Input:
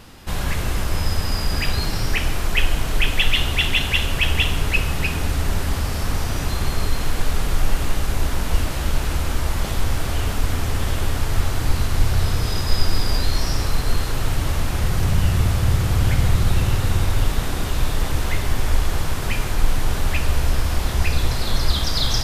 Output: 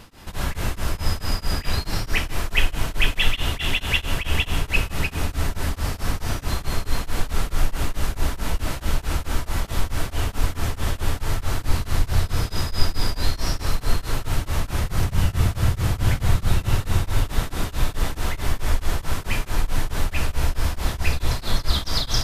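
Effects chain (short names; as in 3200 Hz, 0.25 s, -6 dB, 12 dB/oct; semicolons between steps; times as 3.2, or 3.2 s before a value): on a send at -18 dB: band shelf 1200 Hz +13 dB + reverb, pre-delay 3 ms; on the sum: beating tremolo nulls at 4.6 Hz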